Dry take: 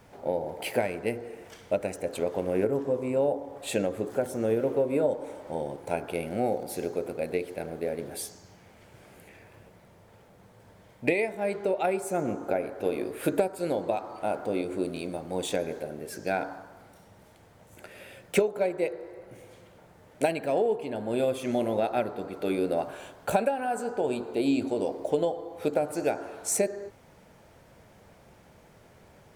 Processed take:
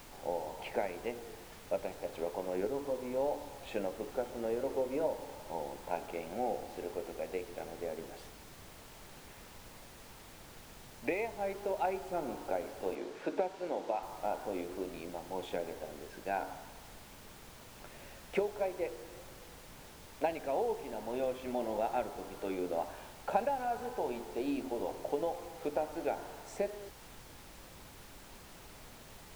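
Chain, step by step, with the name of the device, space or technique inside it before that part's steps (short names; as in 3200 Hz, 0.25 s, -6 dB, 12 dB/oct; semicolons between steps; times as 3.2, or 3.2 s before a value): horn gramophone (BPF 210–3200 Hz; bell 880 Hz +8 dB 0.51 oct; wow and flutter; pink noise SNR 14 dB); 12.95–14.03 three-band isolator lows -15 dB, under 160 Hz, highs -13 dB, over 7500 Hz; gain -9 dB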